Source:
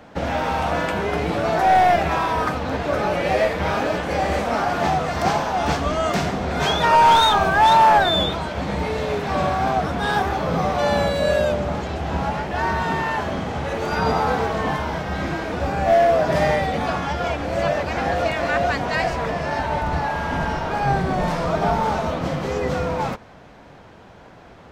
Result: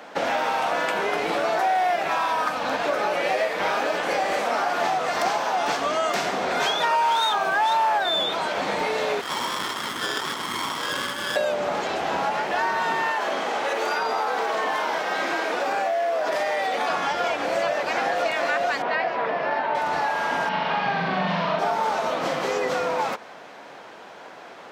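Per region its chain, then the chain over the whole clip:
2.11–2.84 bell 400 Hz -14 dB 0.25 oct + notch 2000 Hz, Q 15
9.21–11.36 brick-wall FIR band-stop 350–1100 Hz + inverted band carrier 3400 Hz + running maximum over 17 samples
13.11–16.9 HPF 270 Hz + compressor, threshold -21 dBFS
18.82–19.75 HPF 130 Hz + air absorption 310 m
20.49–21.59 speaker cabinet 100–4200 Hz, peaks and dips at 180 Hz +10 dB, 340 Hz -9 dB, 480 Hz -7 dB, 740 Hz -5 dB, 1400 Hz -4 dB, 2900 Hz +3 dB + flutter echo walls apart 7.2 m, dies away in 0.78 s
whole clip: HPF 320 Hz 12 dB/oct; low shelf 500 Hz -6 dB; compressor 4:1, threshold -28 dBFS; gain +6.5 dB

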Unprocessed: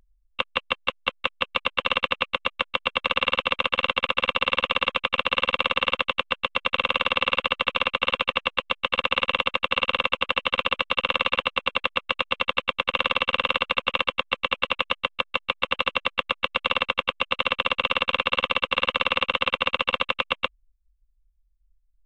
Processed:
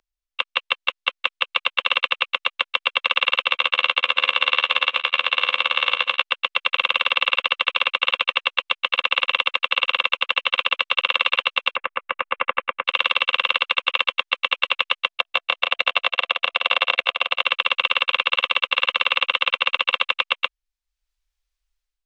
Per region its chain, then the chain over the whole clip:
3.48–6.22 reverse delay 0.556 s, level -11 dB + doubler 14 ms -10.5 dB
11.76–12.84 LPF 2100 Hz 24 dB/oct + low shelf 270 Hz +6.5 dB
15.08–17.44 bell 680 Hz +13.5 dB 0.25 oct + level quantiser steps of 22 dB + echo 0.17 s -5 dB
whole clip: tilt shelf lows -5.5 dB, about 1100 Hz; AGC; three-band isolator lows -18 dB, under 350 Hz, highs -12 dB, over 6800 Hz; gain -1 dB

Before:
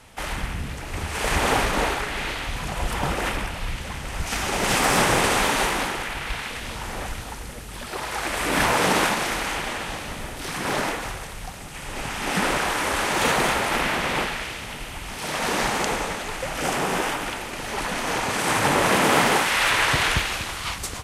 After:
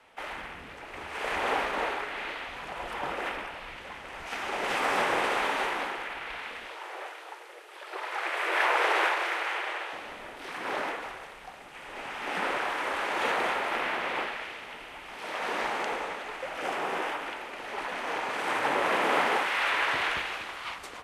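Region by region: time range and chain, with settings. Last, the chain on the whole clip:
6.66–9.93 dynamic EQ 1900 Hz, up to +4 dB, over -32 dBFS, Q 0.71 + brick-wall FIR high-pass 310 Hz
whole clip: three-band isolator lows -19 dB, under 300 Hz, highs -15 dB, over 3300 Hz; de-hum 50.39 Hz, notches 38; gain -5 dB

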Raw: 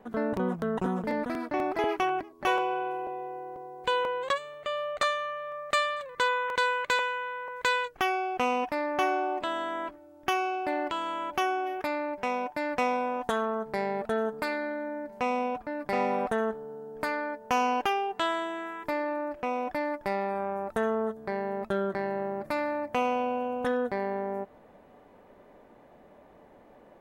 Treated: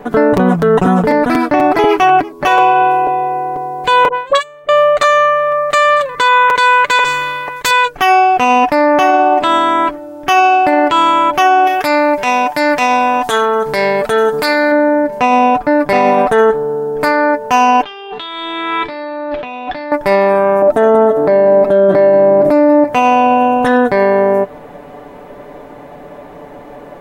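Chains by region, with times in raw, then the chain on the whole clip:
4.08–4.69 gate -31 dBFS, range -17 dB + dispersion highs, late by 48 ms, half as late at 940 Hz
7.04–7.71 expander -31 dBFS + spectral compressor 2:1
11.67–14.72 high shelf 2100 Hz +11 dB + compressor 2:1, threshold -33 dBFS
17.83–19.92 negative-ratio compressor -40 dBFS + synth low-pass 3700 Hz, resonance Q 5.1 + resonator 86 Hz, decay 0.35 s
20.62–22.84 small resonant body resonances 290/620 Hz, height 16 dB, ringing for 30 ms + echo 0.184 s -14.5 dB
whole clip: comb 6.9 ms, depth 53%; maximiser +21.5 dB; gain -1 dB

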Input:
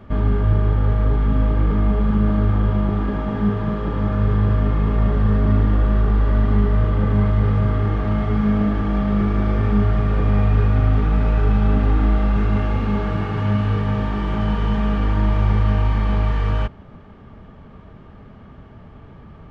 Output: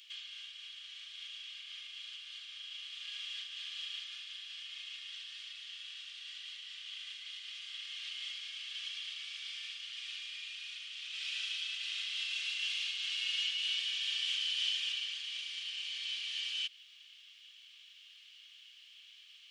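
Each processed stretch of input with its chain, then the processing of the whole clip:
11.11–14.92 HPF 120 Hz + comb 4.5 ms, depth 31%
whole clip: compressor, threshold -20 dBFS; elliptic high-pass 2900 Hz, stop band 80 dB; gain +13 dB

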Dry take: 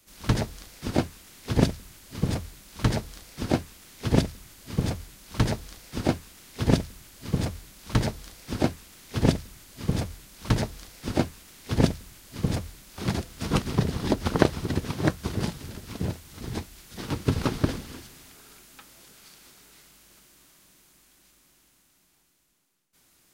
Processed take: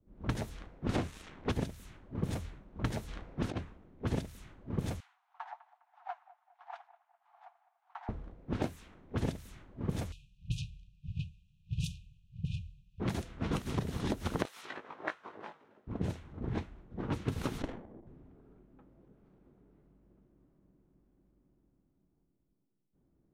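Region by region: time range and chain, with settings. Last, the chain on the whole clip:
0.89–1.52 sample leveller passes 3 + air absorption 58 m
3.08–3.58 high shelf 11000 Hz -9.5 dB + negative-ratio compressor -28 dBFS, ratio -0.5
5–8.09 Chebyshev high-pass 710 Hz, order 8 + flange 1.1 Hz, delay 2.4 ms, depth 7 ms, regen +55% + analogue delay 0.205 s, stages 4096, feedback 66%, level -12.5 dB
10.12–13 brick-wall FIR band-stop 180–2400 Hz + low shelf 220 Hz -7 dB + mismatched tape noise reduction encoder only
14.45–15.87 HPF 1100 Hz + doubler 19 ms -4.5 dB
17.62–18.07 HPF 750 Hz 6 dB/oct + running maximum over 33 samples
whole clip: low-pass opened by the level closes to 340 Hz, open at -23 dBFS; bell 4800 Hz -6.5 dB 0.33 oct; compressor 10:1, threshold -30 dBFS

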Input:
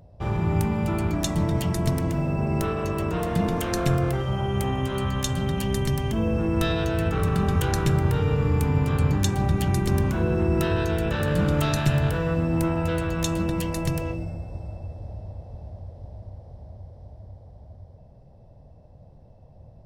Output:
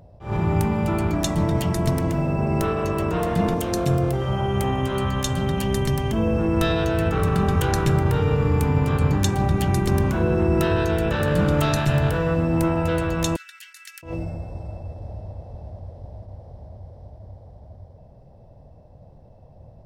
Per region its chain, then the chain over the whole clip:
3.54–4.22 HPF 46 Hz + bell 1600 Hz -7.5 dB 1.6 oct
13.36–14.03 Chebyshev high-pass 1400 Hz, order 6 + upward expander, over -45 dBFS
whole clip: bell 720 Hz +3 dB 2.7 oct; attack slew limiter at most 170 dB/s; gain +1.5 dB

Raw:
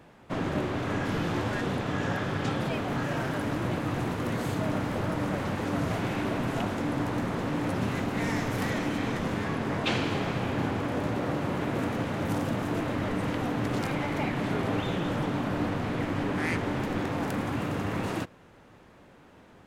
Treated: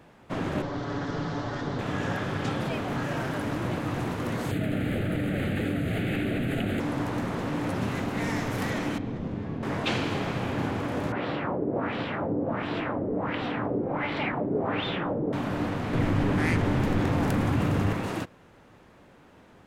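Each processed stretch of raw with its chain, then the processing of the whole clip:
0.62–1.79 minimum comb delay 7 ms + LPF 6000 Hz 24 dB/oct + bell 2500 Hz -11 dB 0.59 oct
4.51–6.8 fixed phaser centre 2400 Hz, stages 4 + fast leveller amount 100%
8.98–9.63 LPF 3000 Hz + bell 1700 Hz -13.5 dB 2.9 oct
11.12–15.33 low shelf 130 Hz -8 dB + notch 6400 Hz, Q 8.2 + LFO low-pass sine 1.4 Hz 410–3900 Hz
15.93–17.93 low shelf 140 Hz +11.5 dB + fast leveller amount 50%
whole clip: dry

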